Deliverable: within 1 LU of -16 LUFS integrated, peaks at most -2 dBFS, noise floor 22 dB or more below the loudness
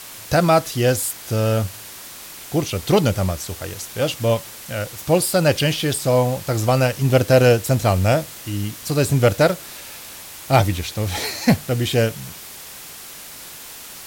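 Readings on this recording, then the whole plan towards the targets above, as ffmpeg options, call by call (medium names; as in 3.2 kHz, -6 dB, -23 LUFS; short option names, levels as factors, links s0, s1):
noise floor -38 dBFS; noise floor target -42 dBFS; loudness -19.5 LUFS; peak level -3.5 dBFS; loudness target -16.0 LUFS
-> -af "afftdn=nr=6:nf=-38"
-af "volume=1.5,alimiter=limit=0.794:level=0:latency=1"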